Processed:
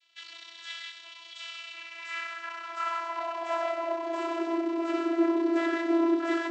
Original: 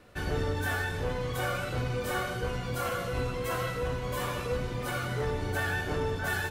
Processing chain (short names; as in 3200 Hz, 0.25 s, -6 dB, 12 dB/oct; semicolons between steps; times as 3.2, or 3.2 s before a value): half-wave rectifier; vocoder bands 32, saw 334 Hz; high-pass sweep 3300 Hz -> 320 Hz, 1.49–4.63; gain +5 dB